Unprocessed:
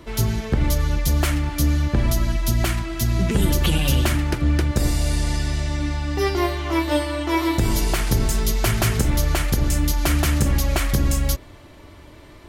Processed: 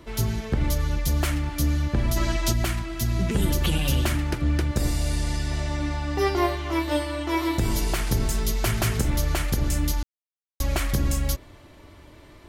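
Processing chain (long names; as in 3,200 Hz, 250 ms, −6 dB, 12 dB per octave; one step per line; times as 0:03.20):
0:02.17–0:02.52: gain on a spectral selection 280–9,000 Hz +7 dB
0:05.51–0:06.56: parametric band 790 Hz +5 dB 2.1 octaves
0:10.03–0:10.60: silence
level −4 dB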